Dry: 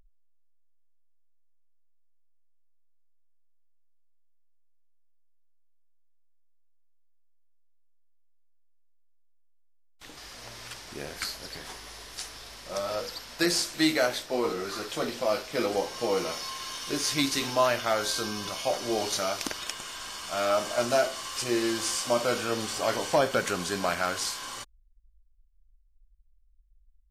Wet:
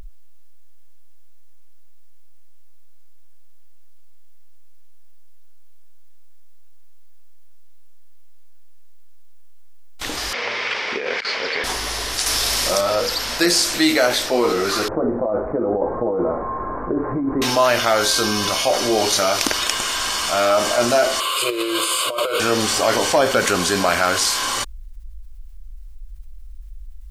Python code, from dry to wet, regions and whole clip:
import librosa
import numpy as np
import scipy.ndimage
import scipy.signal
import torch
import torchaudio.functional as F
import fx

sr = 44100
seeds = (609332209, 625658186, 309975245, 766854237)

y = fx.chain(x, sr, fx.cabinet(low_hz=310.0, low_slope=12, high_hz=4300.0, hz=(320.0, 460.0, 680.0, 2200.0, 4100.0), db=(-8, 7, -5, 8, -5)),
    fx.over_compress(threshold_db=-40.0, ratio=-0.5), at=(10.33, 11.64))
y = fx.chain(y, sr, fx.high_shelf(hz=4800.0, db=9.0),
    fx.env_flatten(amount_pct=50), at=(12.26, 12.81))
y = fx.chain(y, sr, fx.gaussian_blur(sigma=8.9),
    fx.over_compress(threshold_db=-33.0, ratio=-1.0), at=(14.88, 17.42))
y = fx.chain(y, sr, fx.highpass(hz=260.0, slope=12),
    fx.over_compress(threshold_db=-31.0, ratio=-0.5),
    fx.fixed_phaser(hz=1200.0, stages=8), at=(21.2, 22.4))
y = fx.peak_eq(y, sr, hz=150.0, db=-8.0, octaves=0.47)
y = fx.env_flatten(y, sr, amount_pct=50)
y = F.gain(torch.from_numpy(y), 6.5).numpy()